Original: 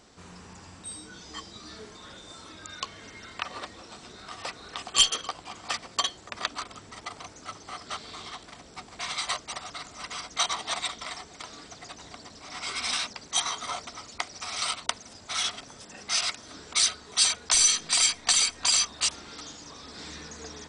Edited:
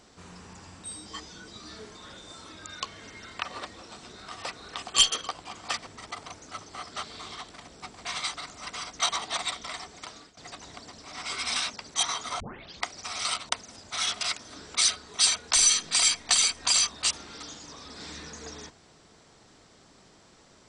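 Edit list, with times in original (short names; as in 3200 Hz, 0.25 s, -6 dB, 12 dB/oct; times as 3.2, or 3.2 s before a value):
1.06–1.48 reverse
5.87–6.81 cut
9.28–9.71 cut
11.34–11.74 fade out equal-power, to -22 dB
13.77 tape start 0.44 s
15.58–16.19 cut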